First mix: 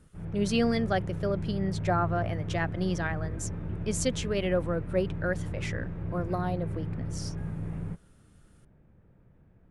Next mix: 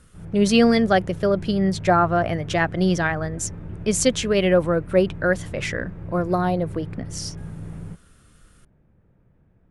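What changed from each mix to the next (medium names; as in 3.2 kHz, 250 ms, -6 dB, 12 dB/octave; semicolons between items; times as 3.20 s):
speech +10.0 dB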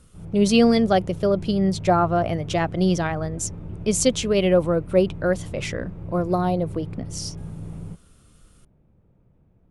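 master: add peaking EQ 1.7 kHz -9 dB 0.64 oct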